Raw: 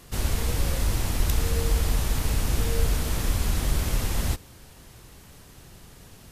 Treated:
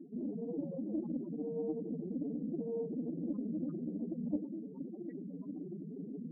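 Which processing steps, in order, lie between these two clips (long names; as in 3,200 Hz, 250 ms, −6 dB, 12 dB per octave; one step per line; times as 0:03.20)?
Butterworth high-pass 160 Hz 72 dB per octave
reversed playback
downward compressor 12 to 1, threshold −44 dBFS, peak gain reduction 18 dB
reversed playback
spectral peaks only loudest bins 4
hollow resonant body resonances 300/1,800 Hz, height 14 dB, ringing for 30 ms
highs frequency-modulated by the lows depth 0.28 ms
level +9 dB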